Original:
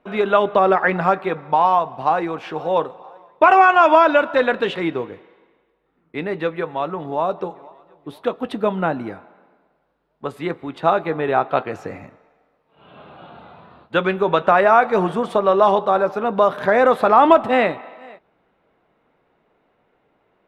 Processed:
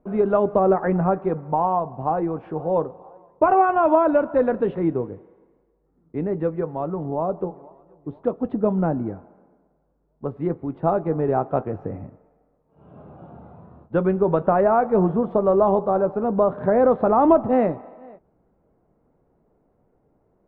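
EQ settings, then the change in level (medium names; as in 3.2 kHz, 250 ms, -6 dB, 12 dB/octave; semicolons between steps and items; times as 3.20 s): Bessel low-pass 580 Hz, order 2; bass shelf 140 Hz +11 dB; 0.0 dB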